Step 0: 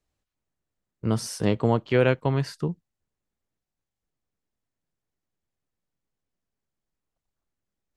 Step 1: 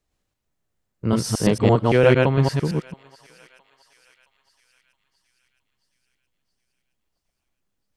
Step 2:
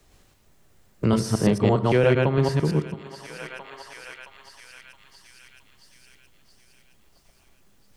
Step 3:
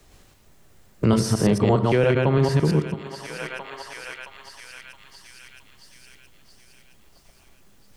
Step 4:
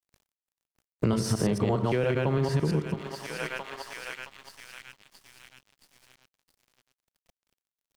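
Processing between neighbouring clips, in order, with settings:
chunks repeated in reverse 113 ms, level 0 dB; thinning echo 669 ms, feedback 59%, high-pass 1.2 kHz, level -20 dB; trim +3 dB
on a send at -13 dB: reverberation RT60 0.70 s, pre-delay 3 ms; on the sum: three bands compressed up and down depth 70%; trim -2.5 dB
peak limiter -14 dBFS, peak gain reduction 7.5 dB; trim +4.5 dB
crossover distortion -45.5 dBFS; compression 6:1, threshold -22 dBFS, peak gain reduction 8 dB

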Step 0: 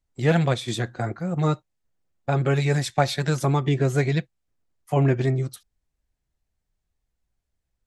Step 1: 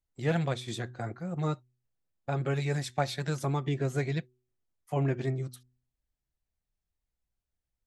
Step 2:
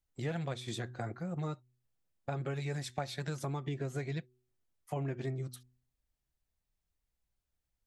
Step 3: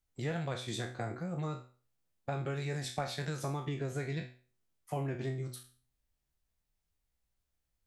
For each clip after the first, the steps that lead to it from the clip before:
de-hum 124.9 Hz, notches 3; trim -8.5 dB
compression 3:1, threshold -37 dBFS, peak gain reduction 11 dB; trim +1 dB
spectral sustain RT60 0.40 s

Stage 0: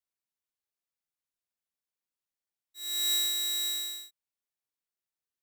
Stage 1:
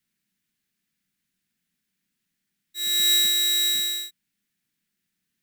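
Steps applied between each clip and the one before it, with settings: FFT filter 110 Hz 0 dB, 190 Hz +15 dB, 540 Hz -12 dB, 1.1 kHz -11 dB, 1.7 kHz +2 dB, 5.7 kHz -3 dB; in parallel at +2 dB: compression, threshold -42 dBFS, peak gain reduction 13.5 dB; on the sum: trim +8 dB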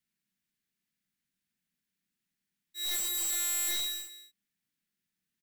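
integer overflow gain 21 dB; delay 209 ms -13.5 dB; trim -7.5 dB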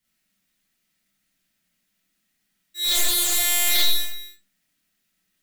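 reverberation RT60 0.35 s, pre-delay 5 ms, DRR -7 dB; loudspeaker Doppler distortion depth 0.15 ms; trim +6.5 dB

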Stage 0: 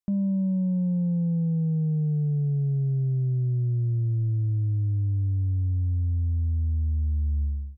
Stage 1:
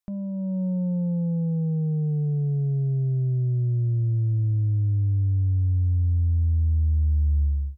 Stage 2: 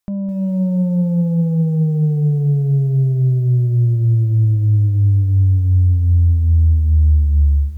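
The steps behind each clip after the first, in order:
peaking EQ 200 Hz -9 dB 1.9 oct; in parallel at -2 dB: peak limiter -33 dBFS, peak gain reduction 9 dB; on the sum: level rider gain up to 6 dB; trim -1.5 dB
bit-crushed delay 207 ms, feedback 35%, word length 9-bit, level -13 dB; trim +8.5 dB

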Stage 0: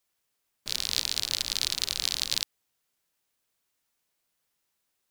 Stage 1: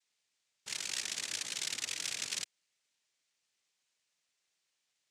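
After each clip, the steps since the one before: noise-vocoded speech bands 3; trim -8 dB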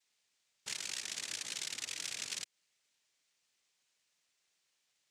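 compression, threshold -39 dBFS, peak gain reduction 7.5 dB; trim +2.5 dB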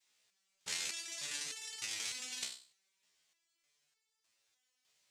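thinning echo 94 ms, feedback 18%, high-pass 1.2 kHz, level -10.5 dB; resonator arpeggio 3.3 Hz 64–440 Hz; trim +11 dB

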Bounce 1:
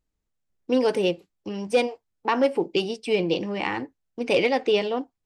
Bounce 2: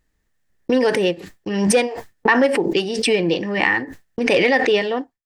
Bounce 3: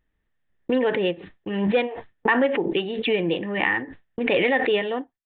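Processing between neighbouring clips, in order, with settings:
expander -39 dBFS; peaking EQ 1.8 kHz +14.5 dB 0.25 oct; swell ahead of each attack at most 44 dB/s; trim +3.5 dB
resampled via 8 kHz; trim -4.5 dB

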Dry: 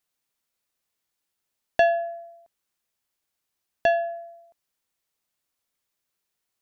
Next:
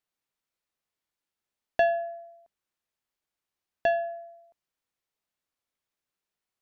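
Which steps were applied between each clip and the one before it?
treble shelf 5.1 kHz -8.5 dB; de-hum 52.72 Hz, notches 4; trim -3.5 dB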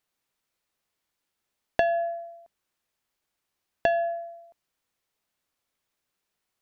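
compression 10:1, threshold -26 dBFS, peak gain reduction 8.5 dB; trim +6.5 dB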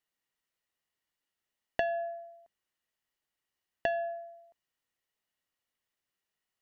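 small resonant body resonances 1.9/2.9 kHz, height 11 dB, ringing for 30 ms; trim -7.5 dB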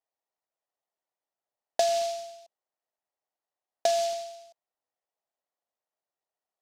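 band-pass filter 690 Hz, Q 2.4; delay time shaken by noise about 4.5 kHz, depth 0.065 ms; trim +7 dB

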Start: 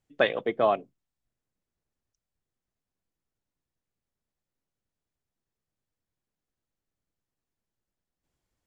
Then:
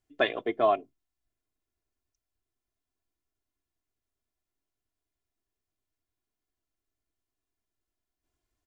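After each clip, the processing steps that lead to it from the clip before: comb 2.9 ms, depth 64%; trim -3 dB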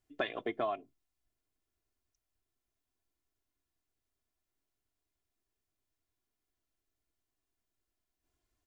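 dynamic bell 460 Hz, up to -5 dB, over -35 dBFS, Q 1.2; compression 6:1, threshold -31 dBFS, peak gain reduction 10 dB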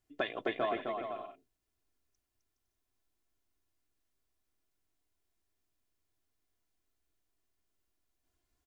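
bouncing-ball echo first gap 260 ms, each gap 0.6×, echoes 5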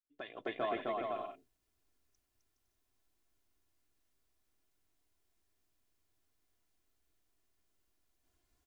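fade-in on the opening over 1.29 s; trim +3 dB

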